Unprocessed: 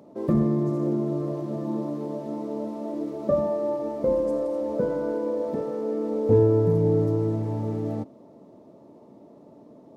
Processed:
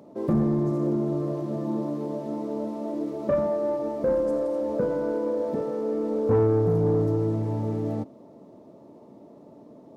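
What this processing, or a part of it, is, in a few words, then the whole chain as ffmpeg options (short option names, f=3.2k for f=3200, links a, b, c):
saturation between pre-emphasis and de-emphasis: -af "highshelf=f=2.1k:g=9,asoftclip=type=tanh:threshold=-16dB,highshelf=f=2.1k:g=-9,volume=1dB"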